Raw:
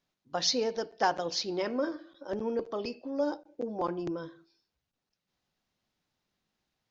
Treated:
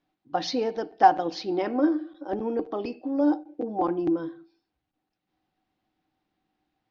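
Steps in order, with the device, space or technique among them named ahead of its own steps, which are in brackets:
inside a cardboard box (low-pass filter 3,300 Hz 12 dB per octave; hollow resonant body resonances 310/760 Hz, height 15 dB, ringing for 85 ms)
level +2 dB

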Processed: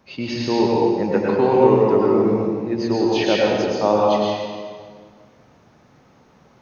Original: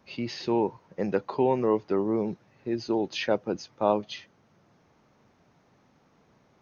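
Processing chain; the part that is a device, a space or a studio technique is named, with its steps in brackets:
stairwell (convolution reverb RT60 1.8 s, pre-delay 97 ms, DRR −4 dB)
level +4.5 dB

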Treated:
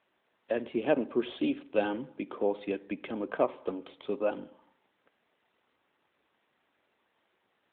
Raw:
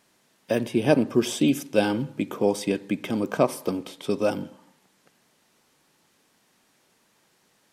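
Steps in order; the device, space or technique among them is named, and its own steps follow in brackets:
telephone (band-pass filter 310–3,400 Hz; level −5 dB; AMR narrowband 12.2 kbit/s 8,000 Hz)

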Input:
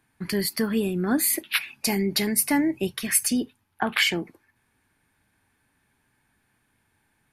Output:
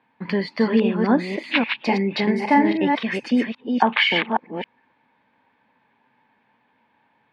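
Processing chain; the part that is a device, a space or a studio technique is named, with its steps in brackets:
delay that plays each chunk backwards 273 ms, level −4 dB
kitchen radio (loudspeaker in its box 210–3,400 Hz, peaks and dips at 230 Hz +5 dB, 350 Hz −5 dB, 520 Hz +8 dB, 930 Hz +10 dB, 1,400 Hz −5 dB)
0:02.23–0:02.82: double-tracking delay 43 ms −7 dB
level +4 dB

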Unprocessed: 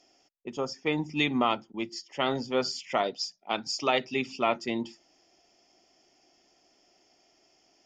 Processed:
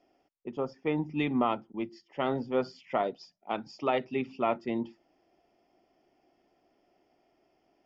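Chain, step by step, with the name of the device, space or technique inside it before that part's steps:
phone in a pocket (low-pass filter 3,400 Hz 12 dB per octave; high-shelf EQ 2,000 Hz −12 dB)

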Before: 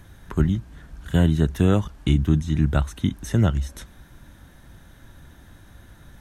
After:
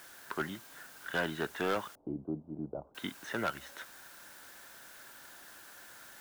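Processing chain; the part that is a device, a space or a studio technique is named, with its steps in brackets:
drive-through speaker (band-pass filter 520–3,000 Hz; parametric band 1,500 Hz +6 dB 0.35 octaves; hard clipping −24 dBFS, distortion −9 dB; white noise bed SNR 16 dB)
0:01.95–0:02.95: inverse Chebyshev low-pass filter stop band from 1,700 Hz, stop band 50 dB
low-shelf EQ 350 Hz −3 dB
level −1 dB

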